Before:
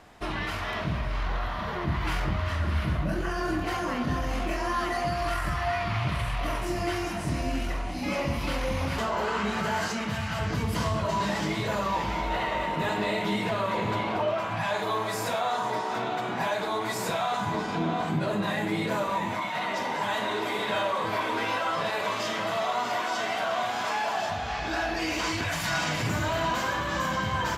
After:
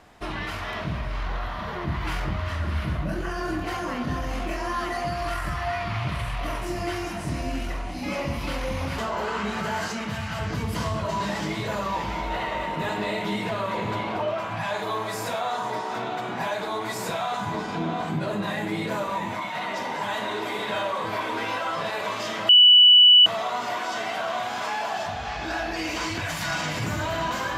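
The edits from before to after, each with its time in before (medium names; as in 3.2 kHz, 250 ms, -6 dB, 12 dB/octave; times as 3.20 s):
22.49 s: add tone 2.96 kHz -9.5 dBFS 0.77 s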